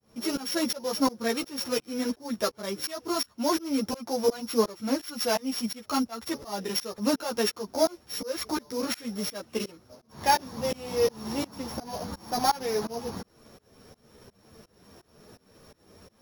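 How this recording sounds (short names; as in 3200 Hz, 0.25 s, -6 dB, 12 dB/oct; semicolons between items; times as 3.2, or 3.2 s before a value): a buzz of ramps at a fixed pitch in blocks of 8 samples; tremolo saw up 2.8 Hz, depth 100%; a shimmering, thickened sound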